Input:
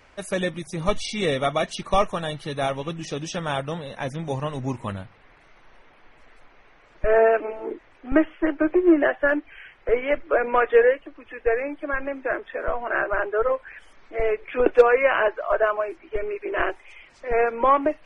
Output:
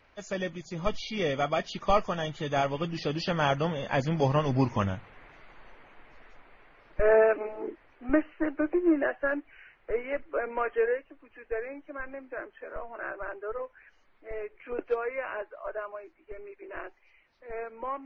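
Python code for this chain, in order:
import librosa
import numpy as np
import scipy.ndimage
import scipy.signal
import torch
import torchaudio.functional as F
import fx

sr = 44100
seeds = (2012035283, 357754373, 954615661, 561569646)

y = fx.freq_compress(x, sr, knee_hz=2800.0, ratio=1.5)
y = fx.doppler_pass(y, sr, speed_mps=8, closest_m=11.0, pass_at_s=4.52)
y = F.gain(torch.from_numpy(y), 3.0).numpy()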